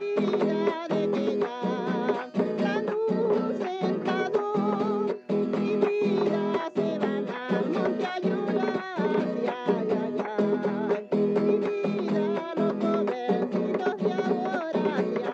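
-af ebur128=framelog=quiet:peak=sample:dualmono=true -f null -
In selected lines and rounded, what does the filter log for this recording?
Integrated loudness:
  I:         -24.0 LUFS
  Threshold: -34.0 LUFS
Loudness range:
  LRA:         1.0 LU
  Threshold: -44.0 LUFS
  LRA low:   -24.5 LUFS
  LRA high:  -23.5 LUFS
Sample peak:
  Peak:      -10.2 dBFS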